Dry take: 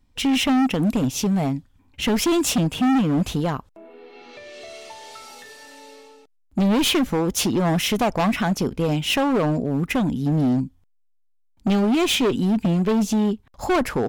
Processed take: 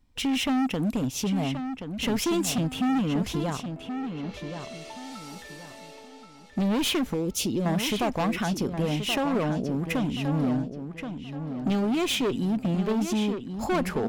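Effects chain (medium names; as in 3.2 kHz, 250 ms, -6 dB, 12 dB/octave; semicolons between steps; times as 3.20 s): 7.14–7.66 s: high-order bell 1.2 kHz -12.5 dB; in parallel at -1 dB: compression, threshold -28 dBFS, peak gain reduction 10 dB; on the sum: filtered feedback delay 1077 ms, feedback 32%, low-pass 5 kHz, level -8 dB; trim -8.5 dB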